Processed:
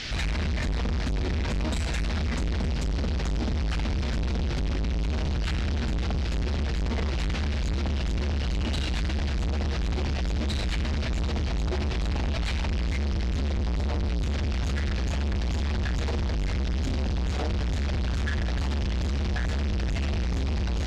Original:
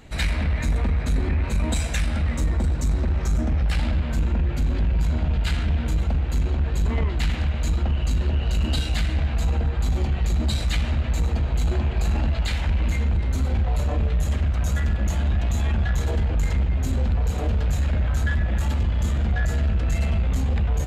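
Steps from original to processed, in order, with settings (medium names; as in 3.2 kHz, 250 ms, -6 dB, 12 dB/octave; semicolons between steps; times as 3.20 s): 13.23–14.30 s: bass shelf 140 Hz +5.5 dB; in parallel at +2.5 dB: peak limiter -21.5 dBFS, peak gain reduction 10 dB; on the sum: band noise 1.5–5.6 kHz -33 dBFS; saturation -25 dBFS, distortion -8 dB; distance through air 69 m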